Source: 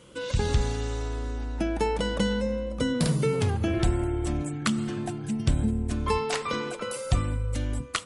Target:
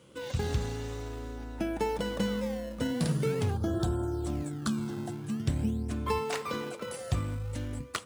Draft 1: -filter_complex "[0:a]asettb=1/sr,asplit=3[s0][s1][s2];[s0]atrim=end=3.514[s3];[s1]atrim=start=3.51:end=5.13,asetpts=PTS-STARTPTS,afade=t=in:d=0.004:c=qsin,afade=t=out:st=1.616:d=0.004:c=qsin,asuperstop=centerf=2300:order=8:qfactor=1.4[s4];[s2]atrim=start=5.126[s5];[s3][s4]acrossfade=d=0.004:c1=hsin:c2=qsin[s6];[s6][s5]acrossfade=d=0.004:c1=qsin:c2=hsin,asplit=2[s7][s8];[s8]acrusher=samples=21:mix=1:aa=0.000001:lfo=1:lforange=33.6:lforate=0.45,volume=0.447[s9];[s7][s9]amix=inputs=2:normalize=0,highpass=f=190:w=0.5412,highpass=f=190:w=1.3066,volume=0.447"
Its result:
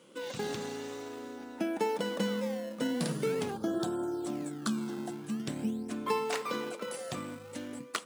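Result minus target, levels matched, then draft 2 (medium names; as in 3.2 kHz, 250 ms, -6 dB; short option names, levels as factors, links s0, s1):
125 Hz band -9.5 dB
-filter_complex "[0:a]asettb=1/sr,asplit=3[s0][s1][s2];[s0]atrim=end=3.514[s3];[s1]atrim=start=3.51:end=5.13,asetpts=PTS-STARTPTS,afade=t=in:d=0.004:c=qsin,afade=t=out:st=1.616:d=0.004:c=qsin,asuperstop=centerf=2300:order=8:qfactor=1.4[s4];[s2]atrim=start=5.126[s5];[s3][s4]acrossfade=d=0.004:c1=hsin:c2=qsin[s6];[s6][s5]acrossfade=d=0.004:c1=qsin:c2=hsin,asplit=2[s7][s8];[s8]acrusher=samples=21:mix=1:aa=0.000001:lfo=1:lforange=33.6:lforate=0.45,volume=0.447[s9];[s7][s9]amix=inputs=2:normalize=0,highpass=f=64:w=0.5412,highpass=f=64:w=1.3066,volume=0.447"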